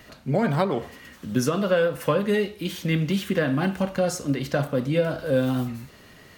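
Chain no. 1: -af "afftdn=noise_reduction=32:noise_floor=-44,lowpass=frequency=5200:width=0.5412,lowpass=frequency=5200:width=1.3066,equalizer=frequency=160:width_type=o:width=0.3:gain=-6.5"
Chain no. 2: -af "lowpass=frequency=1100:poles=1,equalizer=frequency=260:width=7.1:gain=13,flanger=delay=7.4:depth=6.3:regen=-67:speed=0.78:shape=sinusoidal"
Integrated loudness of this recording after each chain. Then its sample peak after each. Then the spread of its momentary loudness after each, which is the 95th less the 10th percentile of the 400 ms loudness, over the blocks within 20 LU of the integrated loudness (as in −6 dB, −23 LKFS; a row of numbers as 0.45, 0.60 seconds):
−25.5, −25.5 LKFS; −10.0, −9.0 dBFS; 8, 10 LU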